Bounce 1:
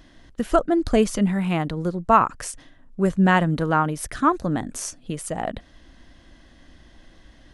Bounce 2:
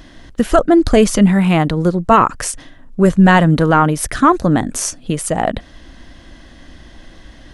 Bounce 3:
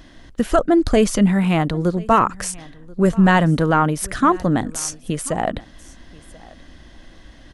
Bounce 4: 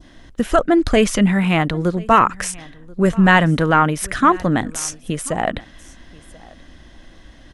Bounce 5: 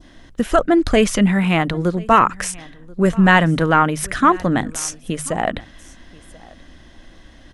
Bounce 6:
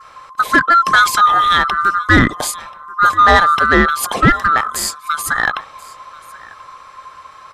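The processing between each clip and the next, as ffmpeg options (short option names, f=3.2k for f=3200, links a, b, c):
-af "apsyclip=13.5dB,volume=-3dB"
-af "aecho=1:1:1034:0.0708,volume=-4.5dB"
-af "bandreject=f=4.5k:w=17,adynamicequalizer=threshold=0.0251:dfrequency=2200:dqfactor=0.83:tfrequency=2200:tqfactor=0.83:attack=5:release=100:ratio=0.375:range=3.5:mode=boostabove:tftype=bell"
-af "bandreject=f=50:t=h:w=6,bandreject=f=100:t=h:w=6,bandreject=f=150:t=h:w=6"
-af "afftfilt=real='real(if(lt(b,960),b+48*(1-2*mod(floor(b/48),2)),b),0)':imag='imag(if(lt(b,960),b+48*(1-2*mod(floor(b/48),2)),b),0)':win_size=2048:overlap=0.75,acontrast=43,volume=-1dB"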